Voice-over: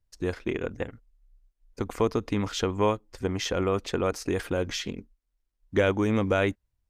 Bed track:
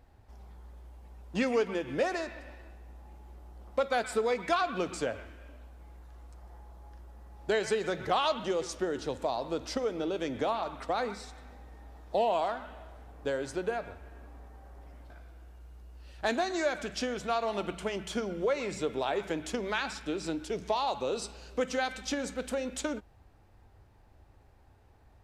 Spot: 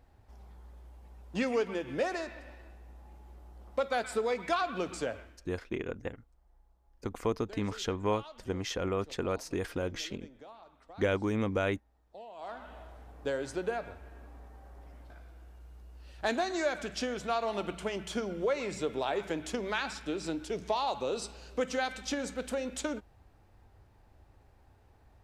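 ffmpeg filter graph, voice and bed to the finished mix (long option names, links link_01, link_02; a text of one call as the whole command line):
ffmpeg -i stem1.wav -i stem2.wav -filter_complex "[0:a]adelay=5250,volume=-6dB[link_01];[1:a]volume=17.5dB,afade=type=out:start_time=5.11:duration=0.39:silence=0.11885,afade=type=in:start_time=12.36:duration=0.41:silence=0.105925[link_02];[link_01][link_02]amix=inputs=2:normalize=0" out.wav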